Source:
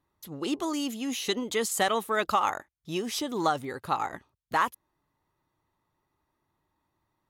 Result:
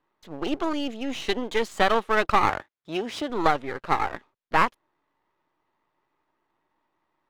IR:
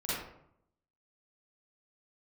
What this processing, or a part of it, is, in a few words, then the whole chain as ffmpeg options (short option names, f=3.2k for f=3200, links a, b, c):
crystal radio: -filter_complex "[0:a]highpass=290,lowpass=2.9k,aeval=exprs='if(lt(val(0),0),0.251*val(0),val(0))':c=same,asettb=1/sr,asplit=3[a][b][c];[a]atrim=end=2.494[d];[b]atrim=start=2.49:end=3.3,asetpts=PTS-STARTPTS,afade=t=in:d=0.004:c=qsin,afade=t=out:st=0.806:d=0.004:c=qsin,highpass=70[e];[c]atrim=start=3.296[f];[d][e]acrossfade=d=0.004:c1=hsin:c2=qsin[g];[g][f]acrossfade=d=0.004:c1=qsin:c2=hsin,volume=8dB"